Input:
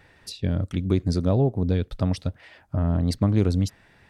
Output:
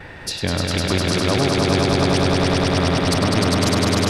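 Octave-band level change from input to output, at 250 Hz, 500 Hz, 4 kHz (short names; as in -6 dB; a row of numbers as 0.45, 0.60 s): +5.5, +9.0, +18.5 dB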